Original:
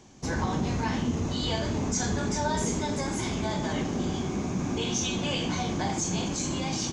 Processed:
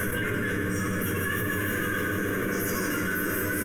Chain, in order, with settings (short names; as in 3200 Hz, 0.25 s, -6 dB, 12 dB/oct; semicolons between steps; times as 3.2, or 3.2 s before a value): soft clip -27.5 dBFS, distortion -13 dB; bell 800 Hz +9.5 dB 0.21 oct; fixed phaser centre 940 Hz, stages 4; doubler 19 ms -5 dB; thinning echo 0.286 s, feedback 81%, high-pass 350 Hz, level -7 dB; shoebox room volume 1500 m³, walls mixed, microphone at 2.5 m; wide varispeed 1.9×; notch 7400 Hz, Q 11; fast leveller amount 100%; gain -5 dB